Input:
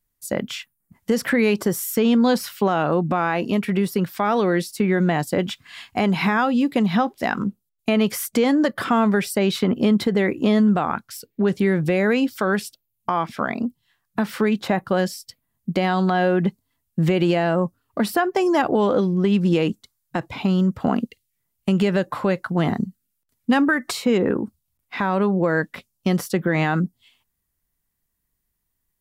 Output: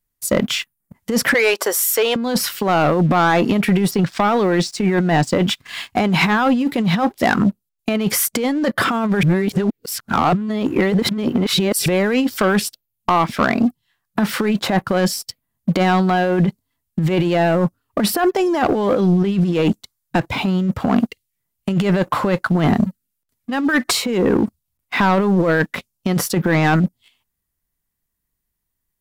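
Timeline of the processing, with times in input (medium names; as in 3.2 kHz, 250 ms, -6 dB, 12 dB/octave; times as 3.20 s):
1.34–2.16 s: high-pass 490 Hz 24 dB/octave
3.91–5.41 s: low-pass 7.6 kHz 24 dB/octave
9.23–11.86 s: reverse
whole clip: compressor with a negative ratio -21 dBFS, ratio -0.5; waveshaping leveller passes 2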